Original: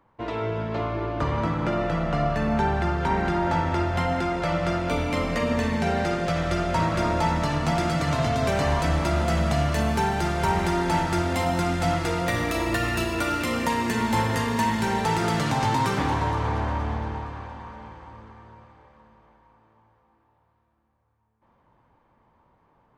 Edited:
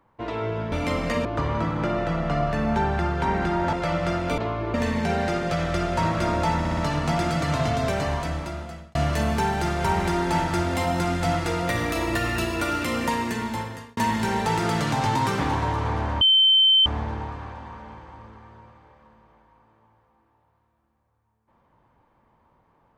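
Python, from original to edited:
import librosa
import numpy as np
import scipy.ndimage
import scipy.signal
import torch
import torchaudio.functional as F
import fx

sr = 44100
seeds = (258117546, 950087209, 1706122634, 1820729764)

y = fx.edit(x, sr, fx.swap(start_s=0.72, length_s=0.36, other_s=4.98, other_length_s=0.53),
    fx.cut(start_s=3.56, length_s=0.77),
    fx.stutter(start_s=7.36, slice_s=0.06, count=4),
    fx.fade_out_span(start_s=8.33, length_s=1.21),
    fx.fade_out_span(start_s=13.69, length_s=0.87),
    fx.insert_tone(at_s=16.8, length_s=0.65, hz=3090.0, db=-13.5), tone=tone)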